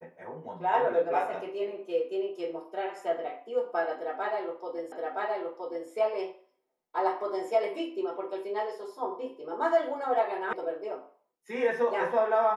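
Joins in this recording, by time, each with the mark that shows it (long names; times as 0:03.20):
0:04.92: the same again, the last 0.97 s
0:10.53: cut off before it has died away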